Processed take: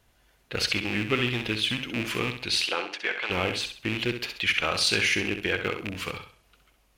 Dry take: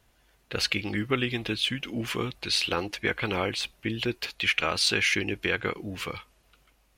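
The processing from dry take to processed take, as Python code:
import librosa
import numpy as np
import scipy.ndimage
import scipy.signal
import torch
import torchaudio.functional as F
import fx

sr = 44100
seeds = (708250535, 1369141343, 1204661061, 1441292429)

y = fx.rattle_buzz(x, sr, strikes_db=-34.0, level_db=-19.0)
y = fx.bandpass_edges(y, sr, low_hz=fx.line((2.64, 380.0), (3.29, 660.0)), high_hz=6100.0, at=(2.64, 3.29), fade=0.02)
y = fx.echo_feedback(y, sr, ms=65, feedback_pct=34, wet_db=-8.0)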